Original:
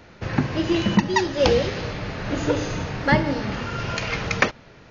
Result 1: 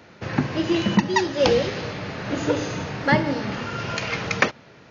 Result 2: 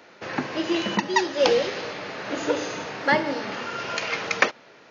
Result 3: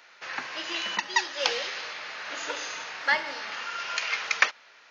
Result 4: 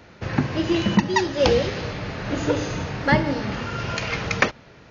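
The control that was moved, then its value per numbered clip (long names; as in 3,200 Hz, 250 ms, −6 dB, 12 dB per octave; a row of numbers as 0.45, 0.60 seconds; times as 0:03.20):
high-pass filter, corner frequency: 110, 340, 1,200, 41 Hertz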